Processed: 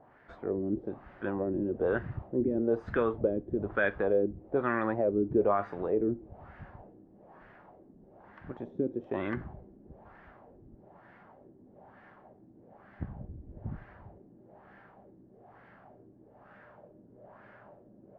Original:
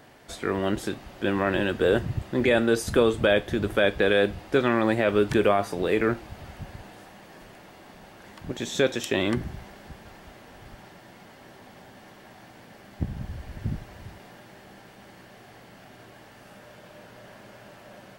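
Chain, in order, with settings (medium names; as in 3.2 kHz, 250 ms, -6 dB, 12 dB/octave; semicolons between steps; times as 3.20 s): treble shelf 9 kHz +9.5 dB; LFO low-pass sine 1.1 Hz 300–1700 Hz; distance through air 69 m; trim -9 dB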